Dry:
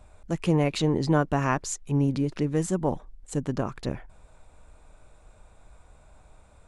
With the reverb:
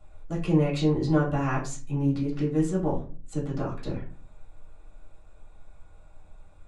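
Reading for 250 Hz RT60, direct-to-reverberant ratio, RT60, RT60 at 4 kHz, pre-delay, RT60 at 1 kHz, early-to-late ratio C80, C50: 0.65 s, -6.0 dB, 0.40 s, 0.25 s, 3 ms, 0.35 s, 14.0 dB, 9.0 dB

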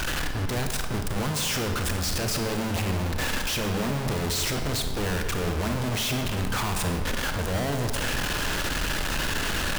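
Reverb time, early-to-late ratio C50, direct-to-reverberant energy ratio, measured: 1.8 s, 5.5 dB, 4.5 dB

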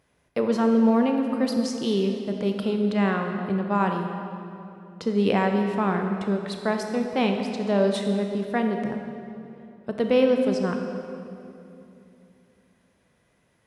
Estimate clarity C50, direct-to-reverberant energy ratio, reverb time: 4.5 dB, 4.0 dB, 2.8 s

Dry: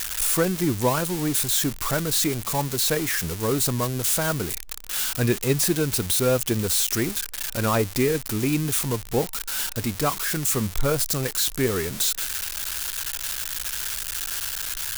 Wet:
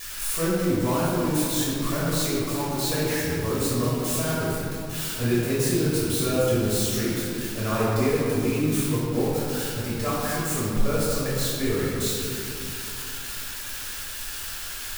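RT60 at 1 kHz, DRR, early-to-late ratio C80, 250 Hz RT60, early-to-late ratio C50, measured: 2.6 s, -9.0 dB, -1.0 dB, 4.0 s, -2.5 dB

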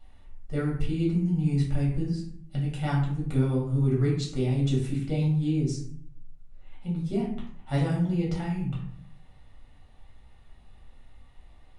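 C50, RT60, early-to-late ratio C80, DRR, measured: 4.5 dB, 0.60 s, 8.0 dB, -5.5 dB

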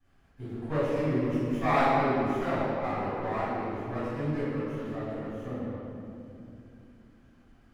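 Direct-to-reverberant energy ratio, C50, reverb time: -18.5 dB, -5.0 dB, 2.8 s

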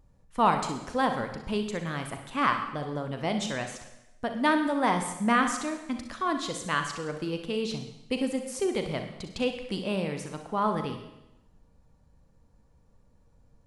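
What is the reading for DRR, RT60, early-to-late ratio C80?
5.5 dB, 0.90 s, 10.0 dB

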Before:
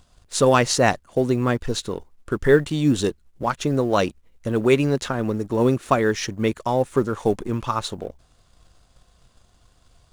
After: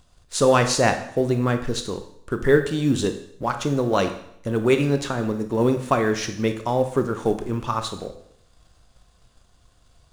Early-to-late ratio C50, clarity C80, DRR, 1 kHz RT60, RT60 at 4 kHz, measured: 9.5 dB, 12.5 dB, 7.0 dB, 0.70 s, 0.65 s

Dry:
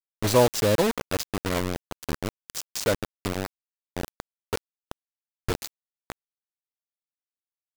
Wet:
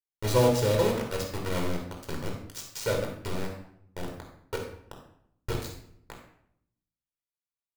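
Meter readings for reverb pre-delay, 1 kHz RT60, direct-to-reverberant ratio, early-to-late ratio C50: 8 ms, 0.65 s, 0.0 dB, 4.0 dB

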